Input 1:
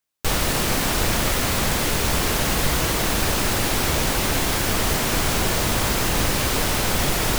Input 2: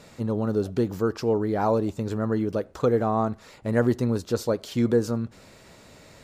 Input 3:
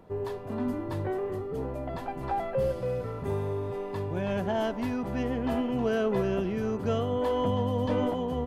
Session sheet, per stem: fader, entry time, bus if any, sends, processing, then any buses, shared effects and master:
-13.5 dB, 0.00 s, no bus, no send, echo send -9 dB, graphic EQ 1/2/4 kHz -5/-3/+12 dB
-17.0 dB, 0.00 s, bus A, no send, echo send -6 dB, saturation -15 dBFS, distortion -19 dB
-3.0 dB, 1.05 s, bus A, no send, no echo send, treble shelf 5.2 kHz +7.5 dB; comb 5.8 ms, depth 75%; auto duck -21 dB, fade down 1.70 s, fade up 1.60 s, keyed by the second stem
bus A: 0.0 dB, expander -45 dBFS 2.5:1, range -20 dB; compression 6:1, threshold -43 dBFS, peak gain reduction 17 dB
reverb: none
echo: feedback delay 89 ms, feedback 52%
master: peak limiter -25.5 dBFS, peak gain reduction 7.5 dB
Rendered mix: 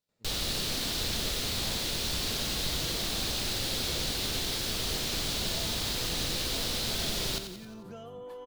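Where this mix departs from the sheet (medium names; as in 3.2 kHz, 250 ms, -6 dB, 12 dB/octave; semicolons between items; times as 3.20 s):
stem 2 -17.0 dB -> -25.5 dB; master: missing peak limiter -25.5 dBFS, peak gain reduction 7.5 dB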